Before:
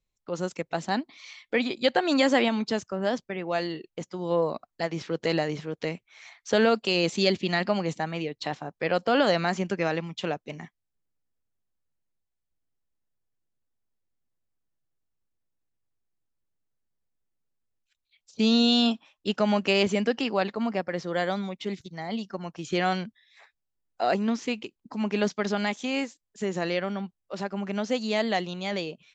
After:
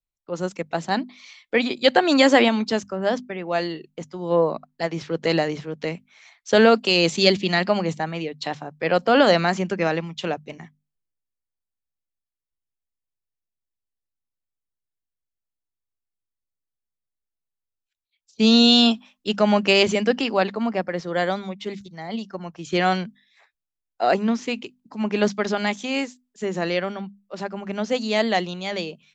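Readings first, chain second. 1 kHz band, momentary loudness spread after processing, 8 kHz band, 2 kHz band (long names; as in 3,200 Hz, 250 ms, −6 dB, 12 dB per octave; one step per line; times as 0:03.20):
+5.5 dB, 16 LU, can't be measured, +5.5 dB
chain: mains-hum notches 50/100/150/200/250 Hz
multiband upward and downward expander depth 40%
level +5 dB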